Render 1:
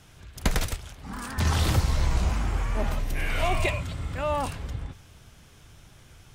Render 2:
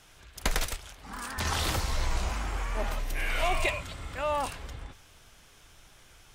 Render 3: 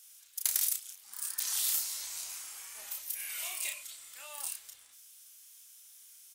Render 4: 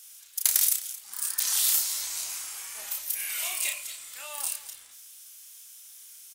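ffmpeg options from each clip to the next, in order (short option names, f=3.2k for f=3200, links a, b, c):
-af "equalizer=f=120:w=0.47:g=-12"
-filter_complex "[0:a]crystalizer=i=2.5:c=0,aderivative,asplit=2[a][b];[b]adelay=32,volume=-4.5dB[c];[a][c]amix=inputs=2:normalize=0,volume=-6dB"
-af "aecho=1:1:225:0.15,volume=7dB"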